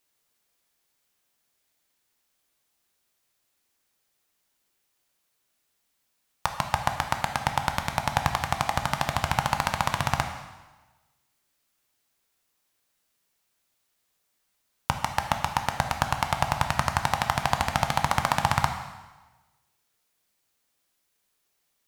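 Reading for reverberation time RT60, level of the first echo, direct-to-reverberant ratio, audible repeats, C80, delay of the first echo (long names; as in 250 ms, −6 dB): 1.2 s, no echo audible, 5.0 dB, no echo audible, 9.5 dB, no echo audible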